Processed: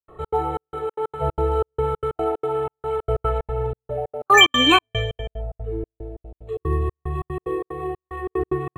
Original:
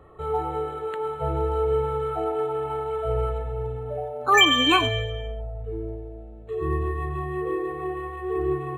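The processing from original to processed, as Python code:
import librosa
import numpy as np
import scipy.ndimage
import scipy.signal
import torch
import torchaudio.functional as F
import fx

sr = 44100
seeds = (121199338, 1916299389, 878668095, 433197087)

y = fx.graphic_eq_15(x, sr, hz=(100, 250, 1600), db=(3, -8, -9), at=(6.19, 8.06))
y = fx.step_gate(y, sr, bpm=185, pattern='.xx.xxx..xx.x', floor_db=-60.0, edge_ms=4.5)
y = fx.peak_eq(y, sr, hz=1400.0, db=5.0, octaves=2.3, at=(3.25, 3.71))
y = F.gain(torch.from_numpy(y), 4.0).numpy()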